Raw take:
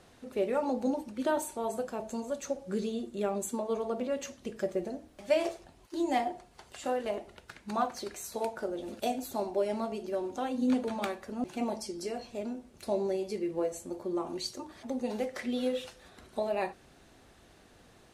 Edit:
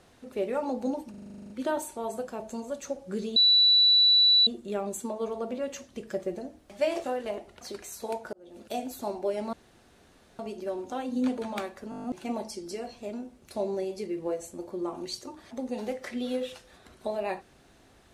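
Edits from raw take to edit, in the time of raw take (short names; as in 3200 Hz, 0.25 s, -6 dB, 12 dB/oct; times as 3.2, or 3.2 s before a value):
1.1 stutter 0.04 s, 11 plays
2.96 add tone 3950 Hz -16.5 dBFS 1.11 s
5.53–6.84 cut
7.41–7.93 cut
8.65–9.17 fade in
9.85 insert room tone 0.86 s
11.36 stutter 0.02 s, 8 plays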